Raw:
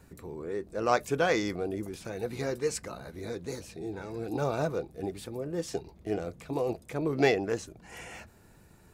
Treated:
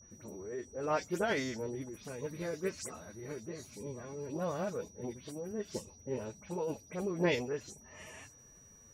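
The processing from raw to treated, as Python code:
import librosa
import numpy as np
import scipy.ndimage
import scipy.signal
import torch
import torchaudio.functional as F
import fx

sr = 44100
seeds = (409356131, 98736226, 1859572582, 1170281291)

y = fx.spec_delay(x, sr, highs='late', ms=110)
y = fx.pitch_keep_formants(y, sr, semitones=4.0)
y = y + 10.0 ** (-52.0 / 20.0) * np.sin(2.0 * np.pi * 5800.0 * np.arange(len(y)) / sr)
y = F.gain(torch.from_numpy(y), -5.5).numpy()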